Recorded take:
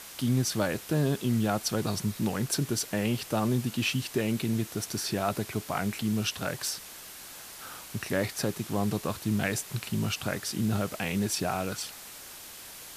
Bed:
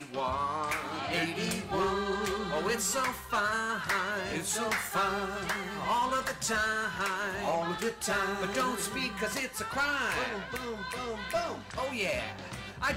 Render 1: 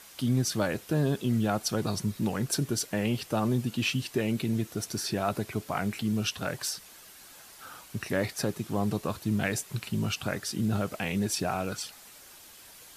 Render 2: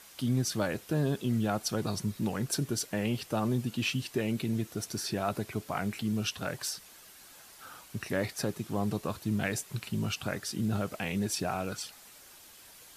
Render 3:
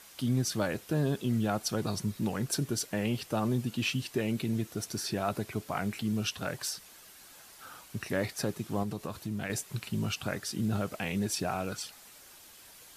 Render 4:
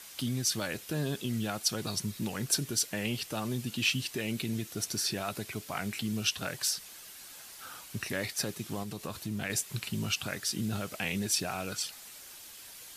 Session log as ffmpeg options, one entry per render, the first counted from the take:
-af "afftdn=nr=7:nf=-45"
-af "volume=-2.5dB"
-filter_complex "[0:a]asettb=1/sr,asplit=3[a][b][c];[a]atrim=end=8.834[d];[b]atrim=start=8.83:end=9.5,asetpts=PTS-STARTPTS,afade=t=in:d=0.004:c=qsin,afade=t=out:st=0.666:d=0.004:c=qsin,acompressor=threshold=-34dB:ratio=2:attack=3.2:release=140:knee=1:detection=peak[e];[c]atrim=start=9.496[f];[d][e]acrossfade=d=0.004:c1=hsin:c2=qsin[g];[g][f]acrossfade=d=0.004:c1=qsin:c2=hsin"
-filter_complex "[0:a]acrossover=split=1900[a][b];[a]alimiter=level_in=1dB:limit=-24dB:level=0:latency=1:release=341,volume=-1dB[c];[b]acontrast=30[d];[c][d]amix=inputs=2:normalize=0"

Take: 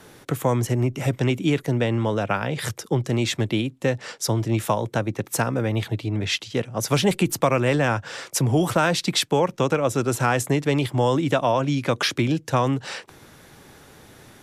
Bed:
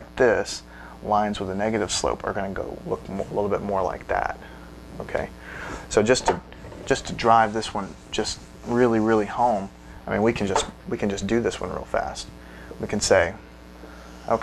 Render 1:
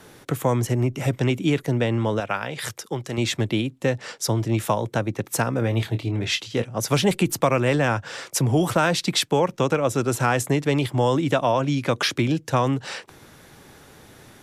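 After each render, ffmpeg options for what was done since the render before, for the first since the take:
-filter_complex "[0:a]asettb=1/sr,asplit=3[a][b][c];[a]atrim=end=2.204[d];[b]atrim=start=2.2:end=3.18,asetpts=PTS-STARTPTS,afade=t=in:d=0.004:c=qsin,afade=t=out:st=0.976:d=0.004:c=qsin,lowshelf=f=470:g=-9[e];[c]atrim=start=3.176[f];[d][e]acrossfade=d=0.004:c1=hsin:c2=qsin[g];[g][f]acrossfade=d=0.004:c1=qsin:c2=hsin,asettb=1/sr,asplit=3[h][i][j];[h]atrim=end=5.594[k];[i]atrim=start=5.59:end=6.64,asetpts=PTS-STARTPTS,afade=t=in:d=0.004:c=qsin,afade=t=out:st=1.046:d=0.004:c=qsin,asplit=2[l][m];[m]adelay=26,volume=-9dB[n];[l][n]amix=inputs=2:normalize=0,atrim=end_sample=46305[o];[j]atrim=start=6.636[p];[k][o]acrossfade=d=0.004:c1=hsin:c2=qsin[q];[q][p]acrossfade=d=0.004:c1=qsin:c2=hsin"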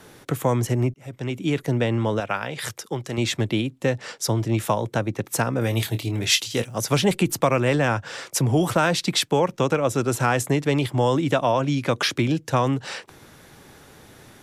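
-filter_complex "[0:a]asettb=1/sr,asplit=3[a][b][c];[a]atrim=end=5.614[d];[b]atrim=start=5.61:end=6.81,asetpts=PTS-STARTPTS,afade=t=in:d=0.004:c=qsin,afade=t=out:st=1.196:d=0.004:c=qsin,aemphasis=mode=production:type=75fm[e];[c]atrim=start=6.806[f];[d][e]acrossfade=d=0.004:c1=hsin:c2=qsin[g];[g][f]acrossfade=d=0.004:c1=qsin:c2=hsin,asplit=2[h][i];[h]atrim=end=0.94,asetpts=PTS-STARTPTS,afade=t=out:st=0.936:d=0.004:c=hsin[j];[i]atrim=start=0.94,asetpts=PTS-STARTPTS,afade=t=in:d=0.73[k];[j][k]concat=n=2:v=0:a=1"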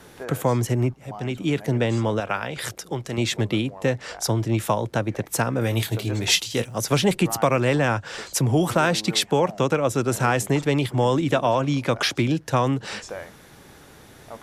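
-filter_complex "[1:a]volume=-17.5dB[a];[0:a][a]amix=inputs=2:normalize=0"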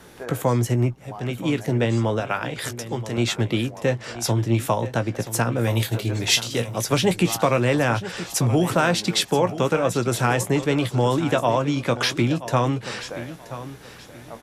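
-filter_complex "[0:a]asplit=2[a][b];[b]adelay=17,volume=-11dB[c];[a][c]amix=inputs=2:normalize=0,aecho=1:1:978|1956|2934:0.2|0.0539|0.0145"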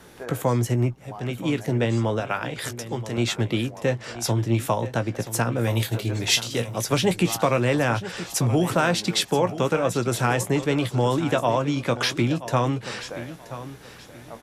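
-af "volume=-1.5dB"

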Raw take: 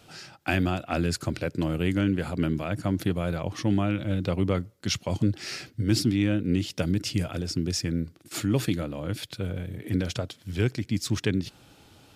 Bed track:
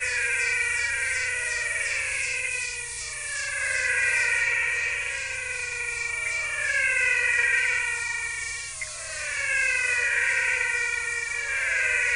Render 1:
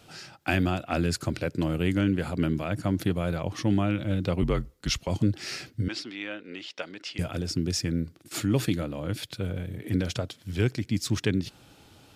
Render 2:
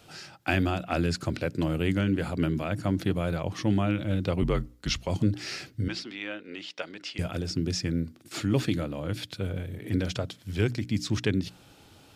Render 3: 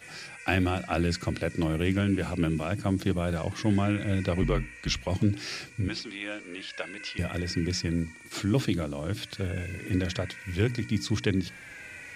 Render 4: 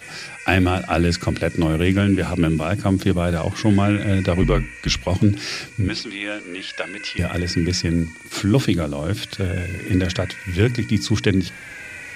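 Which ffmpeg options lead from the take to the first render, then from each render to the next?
-filter_complex "[0:a]asettb=1/sr,asplit=3[a][b][c];[a]atrim=end=4.424[d];[b]atrim=start=4.42:end=5.08,asetpts=PTS-STARTPTS,afade=t=in:d=0.004:c=qsin,afade=t=out:st=0.656:d=0.004:c=qsin,afreqshift=-48[e];[c]atrim=start=5.076[f];[d][e]acrossfade=d=0.004:c1=hsin:c2=qsin[g];[g][f]acrossfade=d=0.004:c1=qsin:c2=hsin,asettb=1/sr,asplit=3[h][i][j];[h]atrim=end=5.884[k];[i]atrim=start=5.88:end=7.19,asetpts=PTS-STARTPTS,afade=t=in:d=0.004:c=qsin,afade=t=out:st=1.306:d=0.004:c=qsin,highpass=700,lowpass=3.7k[l];[j]atrim=start=7.186[m];[k][l]acrossfade=d=0.004:c1=hsin:c2=qsin[n];[n][m]acrossfade=d=0.004:c1=qsin:c2=hsin"
-filter_complex "[0:a]acrossover=split=6700[a][b];[b]acompressor=threshold=-50dB:ratio=4:attack=1:release=60[c];[a][c]amix=inputs=2:normalize=0,bandreject=f=60:t=h:w=6,bandreject=f=120:t=h:w=6,bandreject=f=180:t=h:w=6,bandreject=f=240:t=h:w=6,bandreject=f=300:t=h:w=6"
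-filter_complex "[1:a]volume=-20.5dB[a];[0:a][a]amix=inputs=2:normalize=0"
-af "volume=8.5dB"

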